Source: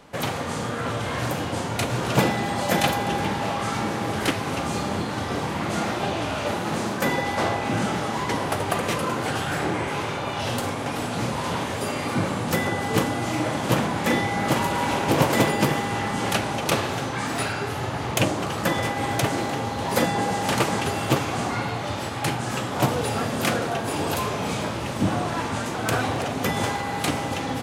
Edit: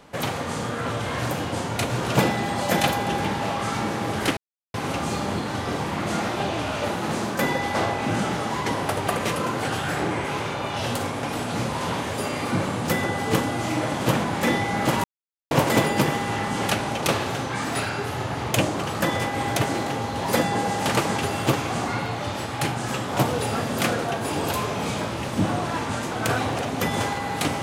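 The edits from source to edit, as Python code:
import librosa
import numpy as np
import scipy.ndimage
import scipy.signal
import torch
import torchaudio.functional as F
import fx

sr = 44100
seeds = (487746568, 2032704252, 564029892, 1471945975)

y = fx.edit(x, sr, fx.insert_silence(at_s=4.37, length_s=0.37),
    fx.silence(start_s=14.67, length_s=0.47), tone=tone)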